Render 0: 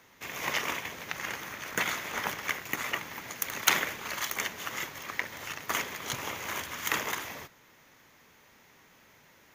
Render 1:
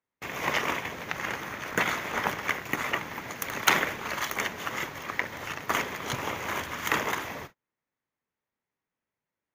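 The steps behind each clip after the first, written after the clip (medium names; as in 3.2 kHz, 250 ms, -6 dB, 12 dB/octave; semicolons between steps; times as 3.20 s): treble shelf 2.7 kHz -10 dB; gate -51 dBFS, range -35 dB; trim +6.5 dB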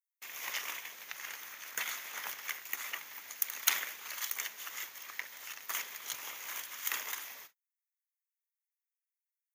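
differentiator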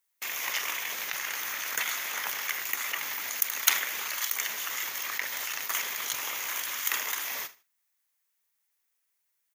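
in parallel at 0 dB: compressor with a negative ratio -49 dBFS, ratio -1; on the sum: feedback delay 77 ms, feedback 28%, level -19.5 dB; trim +5.5 dB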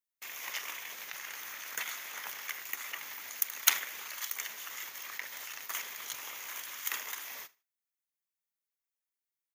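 upward expansion 1.5:1, over -46 dBFS; trim -1.5 dB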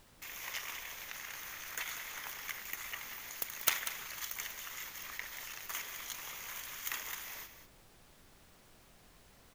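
self-modulated delay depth 0.065 ms; added noise pink -59 dBFS; delay 191 ms -10.5 dB; trim -2.5 dB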